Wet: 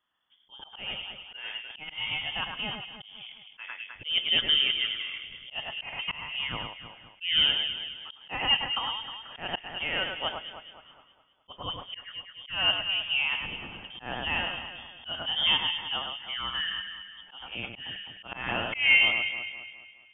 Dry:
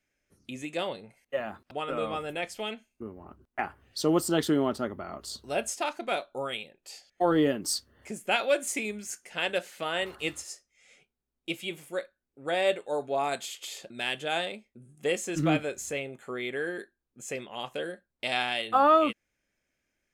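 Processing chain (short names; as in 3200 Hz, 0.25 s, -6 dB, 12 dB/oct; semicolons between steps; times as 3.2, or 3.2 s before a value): inverted band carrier 3400 Hz; echo with dull and thin repeats by turns 0.104 s, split 2300 Hz, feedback 67%, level -4.5 dB; auto swell 0.176 s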